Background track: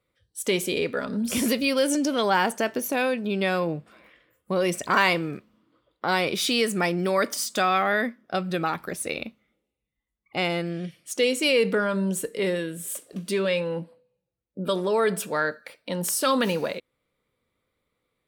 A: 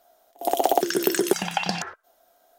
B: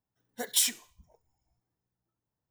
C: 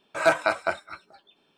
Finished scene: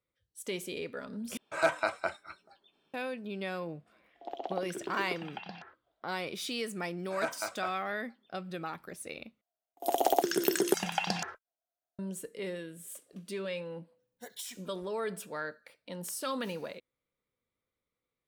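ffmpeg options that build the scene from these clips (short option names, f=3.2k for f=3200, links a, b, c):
-filter_complex "[3:a]asplit=2[a][b];[1:a]asplit=2[c][d];[0:a]volume=-12.5dB[e];[c]lowpass=f=3.9k:w=0.5412,lowpass=f=3.9k:w=1.3066[f];[d]agate=range=-29dB:threshold=-53dB:ratio=16:release=100:detection=peak[g];[2:a]acompressor=threshold=-27dB:ratio=6:attack=3.2:release=140:knee=1:detection=peak[h];[e]asplit=3[i][j][k];[i]atrim=end=1.374[l];[a]atrim=end=1.57,asetpts=PTS-STARTPTS,volume=-7dB[m];[j]atrim=start=2.936:end=9.414[n];[g]atrim=end=2.58,asetpts=PTS-STARTPTS,volume=-6dB[o];[k]atrim=start=11.986[p];[f]atrim=end=2.58,asetpts=PTS-STARTPTS,volume=-17.5dB,afade=t=in:d=0.004:c=hsin,afade=t=out:st=2.576:d=0.004:c=hsin,adelay=3800[q];[b]atrim=end=1.57,asetpts=PTS-STARTPTS,volume=-14dB,afade=t=in:d=0.004:c=hsin,afade=t=out:st=1.566:d=0.004:c=hsin,adelay=6960[r];[h]atrim=end=2.5,asetpts=PTS-STARTPTS,volume=-10.5dB,afade=t=in:d=0.004:c=hsin,afade=t=out:st=2.496:d=0.004:c=hsin,adelay=13830[s];[l][m]acrossfade=d=0.004:c1=hsin:c2=hsin[t];[t][n]acrossfade=d=0.004:c1=hsin:c2=hsin[u];[u][o]acrossfade=d=0.004:c1=hsin:c2=hsin[v];[v][p]acrossfade=d=0.004:c1=hsin:c2=hsin[w];[w][q][r][s]amix=inputs=4:normalize=0"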